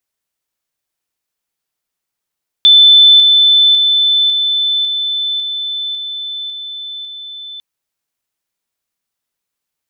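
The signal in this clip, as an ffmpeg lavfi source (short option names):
-f lavfi -i "aevalsrc='pow(10,(-2.5-3*floor(t/0.55))/20)*sin(2*PI*3520*t)':d=4.95:s=44100"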